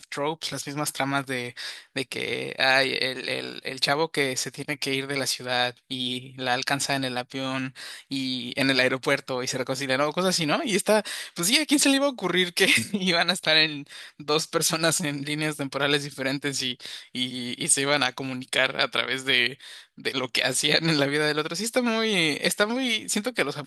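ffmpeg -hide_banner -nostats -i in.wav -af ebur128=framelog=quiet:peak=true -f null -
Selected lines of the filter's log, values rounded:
Integrated loudness:
  I:         -24.3 LUFS
  Threshold: -34.5 LUFS
Loudness range:
  LRA:         4.7 LU
  Threshold: -44.4 LUFS
  LRA low:   -26.6 LUFS
  LRA high:  -21.9 LUFS
True peak:
  Peak:       -4.1 dBFS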